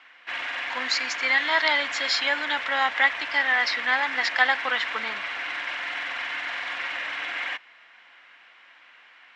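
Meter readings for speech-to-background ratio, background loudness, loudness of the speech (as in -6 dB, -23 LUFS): 6.5 dB, -30.0 LUFS, -23.5 LUFS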